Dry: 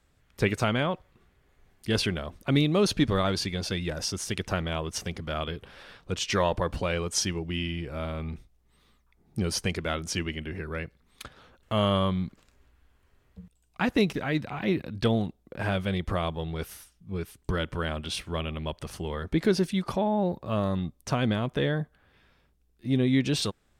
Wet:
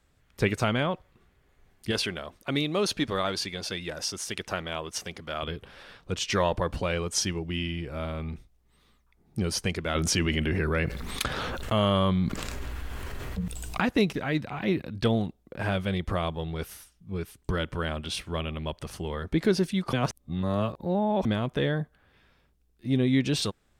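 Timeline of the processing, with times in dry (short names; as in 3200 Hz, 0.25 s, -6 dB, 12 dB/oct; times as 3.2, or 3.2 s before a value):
1.91–5.43 low shelf 240 Hz -11.5 dB
9.95–13.81 fast leveller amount 70%
19.93–21.25 reverse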